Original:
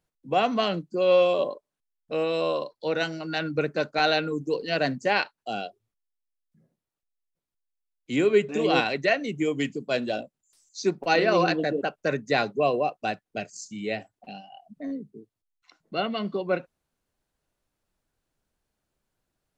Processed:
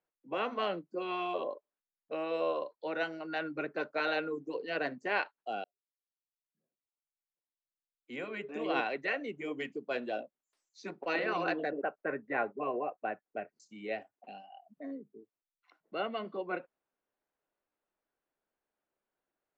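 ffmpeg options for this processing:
ffmpeg -i in.wav -filter_complex "[0:a]asettb=1/sr,asplit=3[link_01][link_02][link_03];[link_01]atrim=end=11.714[link_04];[link_02]atrim=start=11.71:end=13.6,asetpts=PTS-STARTPTS,afade=type=in:duration=0.004:curve=qsin,afade=type=out:start_time=1.886:duration=0.004:curve=qsin,lowpass=frequency=2200:width=0.5412,lowpass=frequency=2200:width=1.3066[link_05];[link_03]atrim=start=13.596[link_06];[link_04][link_05]acrossfade=duration=0.004:curve1=hsin:curve2=qsin[link_07];[link_07][link_06]acrossfade=duration=0.004:curve1=qsin:curve2=hsin,asplit=2[link_08][link_09];[link_08]atrim=end=5.64,asetpts=PTS-STARTPTS,afade=type=out:start_time=5.636:duration=0.004:curve=hsin[link_10];[link_09]atrim=start=5.64,asetpts=PTS-STARTPTS,afade=type=in:duration=3.58[link_11];[link_10][link_11]concat=n=2:v=0:a=1,highshelf=frequency=5000:gain=-8,afftfilt=real='re*lt(hypot(re,im),0.501)':imag='im*lt(hypot(re,im),0.501)':win_size=1024:overlap=0.75,acrossover=split=270 3000:gain=0.112 1 0.224[link_12][link_13][link_14];[link_12][link_13][link_14]amix=inputs=3:normalize=0,volume=-4.5dB" out.wav

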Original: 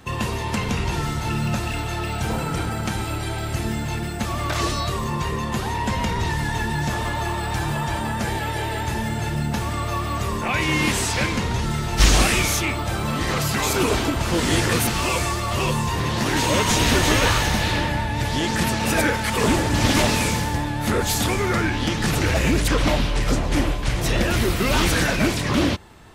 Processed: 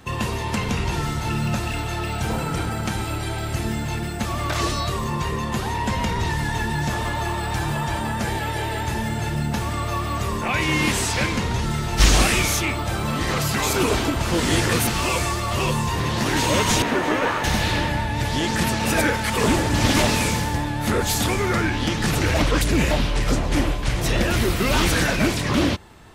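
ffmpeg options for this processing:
ffmpeg -i in.wav -filter_complex "[0:a]asettb=1/sr,asplit=3[link_01][link_02][link_03];[link_01]atrim=end=16.824[link_04];[link_02]atrim=start=16.82:end=17.44,asetpts=PTS-STARTPTS,afade=type=in:duration=0.004:curve=qsin,afade=type=out:start_time=0.616:duration=0.004:curve=qsin,acrossover=split=180 2200:gain=0.1 1 0.178[link_05][link_06][link_07];[link_05][link_06][link_07]amix=inputs=3:normalize=0[link_08];[link_03]atrim=start=17.436[link_09];[link_04][link_08]acrossfade=duration=0.004:curve1=hsin:curve2=qsin[link_10];[link_10][link_09]acrossfade=duration=0.004:curve1=qsin:curve2=hsin,asplit=3[link_11][link_12][link_13];[link_11]atrim=end=22.382[link_14];[link_12]atrim=start=22.378:end=22.912,asetpts=PTS-STARTPTS,areverse[link_15];[link_13]atrim=start=22.908[link_16];[link_14][link_15]acrossfade=duration=0.004:curve1=hsin:curve2=hsin[link_17];[link_17][link_16]acrossfade=duration=0.004:curve1=hsin:curve2=hsin" out.wav

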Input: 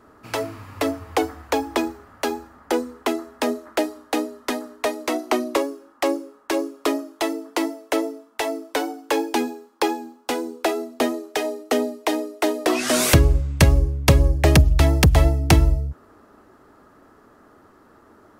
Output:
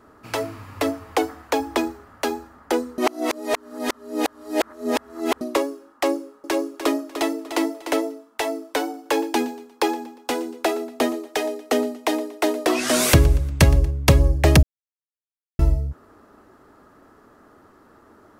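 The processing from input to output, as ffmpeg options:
ffmpeg -i in.wav -filter_complex "[0:a]asettb=1/sr,asplit=3[link_01][link_02][link_03];[link_01]atrim=end=0.904[link_04];[link_02]atrim=start=0.9:end=1.6,asetpts=PTS-STARTPTS,afade=type=in:duration=0.004:curve=qsin,afade=type=out:start_time=0.696:duration=0.004:curve=qsin,equalizer=frequency=67:width_type=o:width=1.3:gain=-8[link_05];[link_03]atrim=start=1.596[link_06];[link_04][link_05]acrossfade=duration=0.004:curve1=hsin:curve2=qsin[link_07];[link_07][link_06]acrossfade=duration=0.004:curve1=qsin:curve2=hsin,asettb=1/sr,asplit=3[link_08][link_09][link_10];[link_08]atrim=end=6.144[link_11];[link_09]atrim=start=6.14:end=8.15,asetpts=PTS-STARTPTS,afade=type=in:duration=0.004:curve=qsin,afade=type=out:start_time=2.006:duration=0.004:curve=qsin,aecho=1:1:298|596|894:0.335|0.0804|0.0193,atrim=end_sample=88641[link_12];[link_10]atrim=start=8.146[link_13];[link_11][link_12]acrossfade=duration=0.004:curve1=hsin:curve2=qsin[link_14];[link_14][link_13]acrossfade=duration=0.004:curve1=qsin:curve2=hsin,asettb=1/sr,asplit=3[link_15][link_16][link_17];[link_15]atrim=end=8.824[link_18];[link_16]atrim=start=8.82:end=13.91,asetpts=PTS-STARTPTS,afade=type=in:duration=0.004:curve=qsin,afade=type=out:start_time=5.086:duration=0.004:curve=qsin,aecho=1:1:118|236|354:0.1|0.046|0.0212,atrim=end_sample=224469[link_19];[link_17]atrim=start=13.906[link_20];[link_18][link_19]acrossfade=duration=0.004:curve1=hsin:curve2=qsin[link_21];[link_21][link_20]acrossfade=duration=0.004:curve1=qsin:curve2=hsin,asplit=5[link_22][link_23][link_24][link_25][link_26];[link_22]atrim=end=2.982[link_27];[link_23]atrim=start=2.978:end=5.412,asetpts=PTS-STARTPTS,areverse[link_28];[link_24]atrim=start=5.408:end=14.63,asetpts=PTS-STARTPTS,afade=type=out:start_time=9.218:duration=0.004:curve=hsin[link_29];[link_25]atrim=start=14.63:end=15.59,asetpts=PTS-STARTPTS,volume=0[link_30];[link_26]atrim=start=15.59,asetpts=PTS-STARTPTS,afade=type=in:duration=0.004:curve=hsin[link_31];[link_27][link_28]acrossfade=duration=0.004:curve1=hsin:curve2=hsin[link_32];[link_29][link_30][link_31]concat=n=3:v=0:a=1[link_33];[link_32][link_33]acrossfade=duration=0.004:curve1=hsin:curve2=hsin" out.wav

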